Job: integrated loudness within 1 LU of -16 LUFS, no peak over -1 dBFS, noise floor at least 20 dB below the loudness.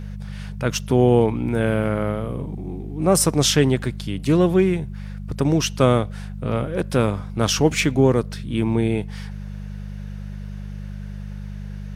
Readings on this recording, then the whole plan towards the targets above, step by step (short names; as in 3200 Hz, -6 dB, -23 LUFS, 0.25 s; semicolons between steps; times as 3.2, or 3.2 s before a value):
hum 50 Hz; harmonics up to 200 Hz; hum level -29 dBFS; loudness -20.5 LUFS; peak -2.5 dBFS; loudness target -16.0 LUFS
-> de-hum 50 Hz, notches 4; gain +4.5 dB; limiter -1 dBFS